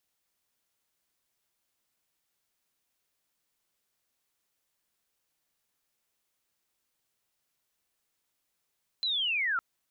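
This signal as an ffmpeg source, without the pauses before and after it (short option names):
-f lavfi -i "aevalsrc='pow(10,(-27+1*t/0.56)/20)*sin(2*PI*(4100*t-2800*t*t/(2*0.56)))':d=0.56:s=44100"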